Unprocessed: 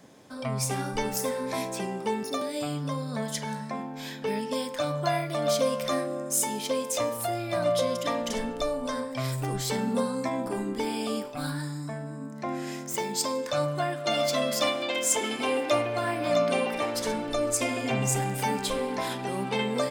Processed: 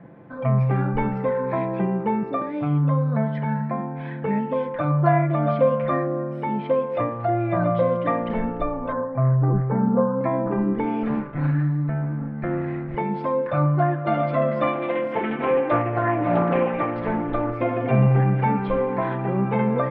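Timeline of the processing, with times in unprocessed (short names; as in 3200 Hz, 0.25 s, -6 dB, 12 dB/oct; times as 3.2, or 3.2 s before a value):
8.92–10.21 LPF 1500 Hz 24 dB/oct
11.03–12.95 minimum comb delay 0.48 ms
14.73–17.54 Doppler distortion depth 0.24 ms
whole clip: inverse Chebyshev low-pass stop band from 6400 Hz, stop band 60 dB; bell 95 Hz +8.5 dB 2.6 oct; comb 5.9 ms, depth 53%; gain +4 dB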